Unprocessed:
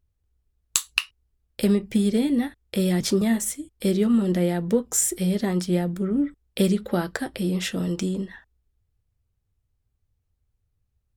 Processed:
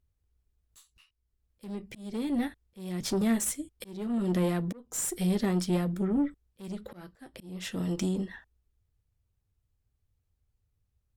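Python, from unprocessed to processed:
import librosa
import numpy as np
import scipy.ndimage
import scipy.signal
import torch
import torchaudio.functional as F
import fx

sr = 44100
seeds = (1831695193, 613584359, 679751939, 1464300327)

y = fx.tube_stage(x, sr, drive_db=19.0, bias=0.4)
y = fx.auto_swell(y, sr, attack_ms=547.0)
y = F.gain(torch.from_numpy(y), -1.0).numpy()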